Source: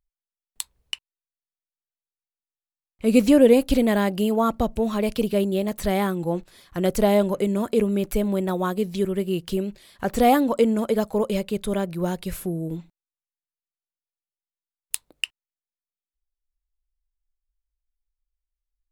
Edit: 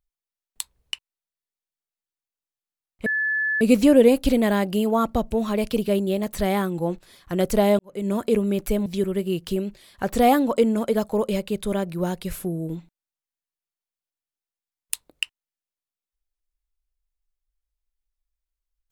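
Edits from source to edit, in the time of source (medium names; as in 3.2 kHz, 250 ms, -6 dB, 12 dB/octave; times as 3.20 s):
3.06 s: add tone 1.73 kHz -20.5 dBFS 0.55 s
7.24–7.54 s: fade in quadratic
8.31–8.87 s: delete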